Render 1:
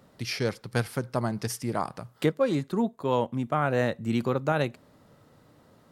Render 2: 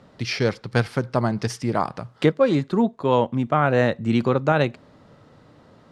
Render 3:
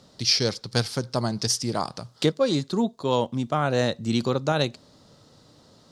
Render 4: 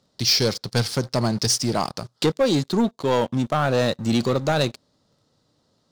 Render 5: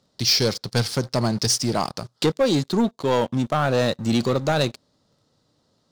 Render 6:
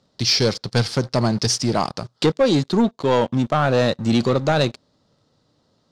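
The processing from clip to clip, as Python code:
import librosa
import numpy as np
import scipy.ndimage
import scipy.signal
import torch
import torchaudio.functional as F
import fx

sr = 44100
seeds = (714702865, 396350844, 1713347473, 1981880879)

y1 = scipy.signal.sosfilt(scipy.signal.butter(2, 5300.0, 'lowpass', fs=sr, output='sos'), x)
y1 = F.gain(torch.from_numpy(y1), 6.5).numpy()
y2 = fx.high_shelf_res(y1, sr, hz=3200.0, db=12.5, q=1.5)
y2 = F.gain(torch.from_numpy(y2), -4.0).numpy()
y3 = fx.leveller(y2, sr, passes=3)
y3 = F.gain(torch.from_numpy(y3), -6.0).numpy()
y4 = y3
y5 = fx.air_absorb(y4, sr, metres=57.0)
y5 = F.gain(torch.from_numpy(y5), 3.0).numpy()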